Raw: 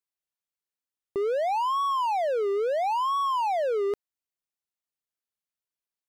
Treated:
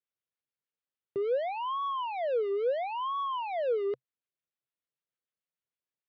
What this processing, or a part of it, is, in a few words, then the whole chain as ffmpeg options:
guitar amplifier with harmonic tremolo: -filter_complex "[0:a]acrossover=split=980[a][b];[a]aeval=exprs='val(0)*(1-0.5/2+0.5/2*cos(2*PI*6.7*n/s))':c=same[c];[b]aeval=exprs='val(0)*(1-0.5/2-0.5/2*cos(2*PI*6.7*n/s))':c=same[d];[c][d]amix=inputs=2:normalize=0,asoftclip=type=tanh:threshold=-27.5dB,highpass=77,equalizer=f=130:t=q:w=4:g=8,equalizer=f=500:t=q:w=4:g=5,equalizer=f=840:t=q:w=4:g=-6,lowpass=f=3.6k:w=0.5412,lowpass=f=3.6k:w=1.3066"

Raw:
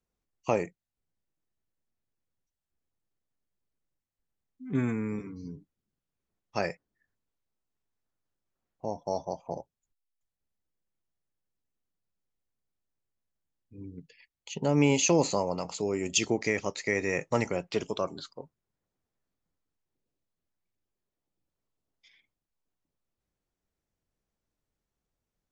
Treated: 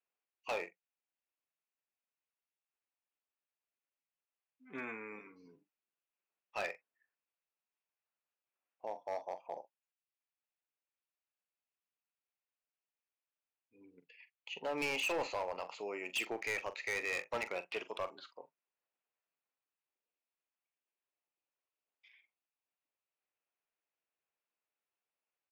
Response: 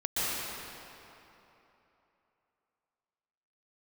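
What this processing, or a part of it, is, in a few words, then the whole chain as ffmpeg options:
megaphone: -filter_complex "[0:a]highpass=640,lowpass=2.6k,equalizer=f=2.6k:t=o:w=0.42:g=9,asoftclip=type=hard:threshold=-28dB,asplit=2[a][b];[b]adelay=44,volume=-13.5dB[c];[a][c]amix=inputs=2:normalize=0,volume=-3.5dB"

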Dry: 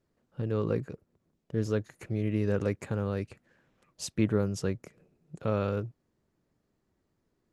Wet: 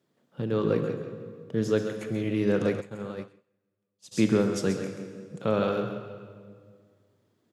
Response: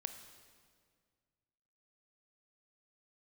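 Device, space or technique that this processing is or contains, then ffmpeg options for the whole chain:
PA in a hall: -filter_complex "[0:a]highpass=f=130:w=0.5412,highpass=f=130:w=1.3066,equalizer=f=3.4k:t=o:w=0.28:g=7.5,aecho=1:1:133:0.355[a];[1:a]atrim=start_sample=2205[b];[a][b]afir=irnorm=-1:irlink=0,asplit=2[c][d];[d]adelay=171,lowpass=f=4.4k:p=1,volume=-12.5dB,asplit=2[e][f];[f]adelay=171,lowpass=f=4.4k:p=1,volume=0.42,asplit=2[g][h];[h]adelay=171,lowpass=f=4.4k:p=1,volume=0.42,asplit=2[i][j];[j]adelay=171,lowpass=f=4.4k:p=1,volume=0.42[k];[c][e][g][i][k]amix=inputs=5:normalize=0,asplit=3[l][m][n];[l]afade=t=out:st=2.8:d=0.02[o];[m]agate=range=-33dB:threshold=-27dB:ratio=3:detection=peak,afade=t=in:st=2.8:d=0.02,afade=t=out:st=4.11:d=0.02[p];[n]afade=t=in:st=4.11:d=0.02[q];[o][p][q]amix=inputs=3:normalize=0,volume=7dB"

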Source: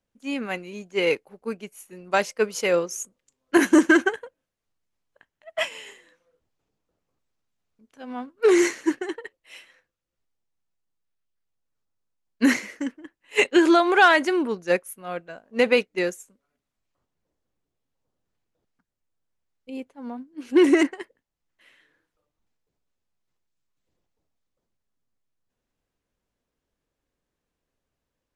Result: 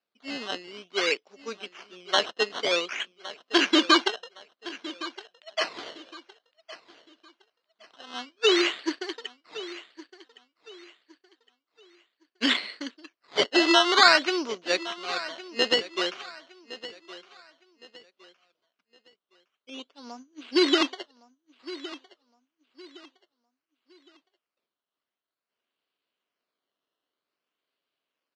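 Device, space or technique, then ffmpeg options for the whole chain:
circuit-bent sampling toy: -filter_complex "[0:a]asettb=1/sr,asplit=3[a][b][c];[a]atrim=end=5.784[d];[b]atrim=start=5.78:end=8.14,asetpts=PTS-STARTPTS,afade=t=in:d=0.004:c=qsin,afade=t=out:st=2.356:d=0.004:c=qsin,tiltshelf=f=830:g=-8.5[e];[c]atrim=start=8.136[f];[d][e]acrossfade=d=0.004:c1=hsin:c2=qsin[g];[g][f]acrossfade=d=0.004:c1=qsin:c2=hsin,acrusher=samples=13:mix=1:aa=0.000001:lfo=1:lforange=13:lforate=0.53,highpass=470,equalizer=f=510:t=q:w=4:g=-6,equalizer=f=840:t=q:w=4:g=-7,equalizer=f=1.8k:t=q:w=4:g=-4,equalizer=f=3k:t=q:w=4:g=7,equalizer=f=4.3k:t=q:w=4:g=5,lowpass=f=5.6k:w=0.5412,lowpass=f=5.6k:w=1.3066,aecho=1:1:1113|2226|3339:0.15|0.0479|0.0153,volume=1dB"

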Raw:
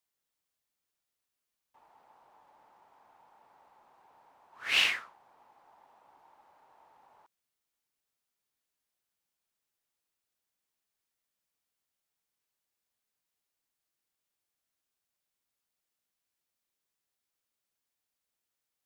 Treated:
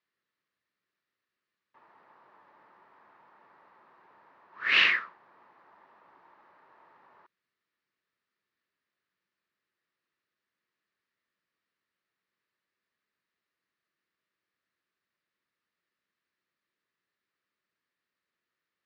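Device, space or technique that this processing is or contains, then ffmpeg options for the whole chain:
guitar cabinet: -af "highpass=100,equalizer=f=190:t=q:w=4:g=4,equalizer=f=360:t=q:w=4:g=5,equalizer=f=780:t=q:w=4:g=-9,equalizer=f=1.2k:t=q:w=4:g=5,equalizer=f=1.8k:t=q:w=4:g=8,equalizer=f=3.3k:t=q:w=4:g=-4,lowpass=f=4.2k:w=0.5412,lowpass=f=4.2k:w=1.3066,volume=3.5dB"

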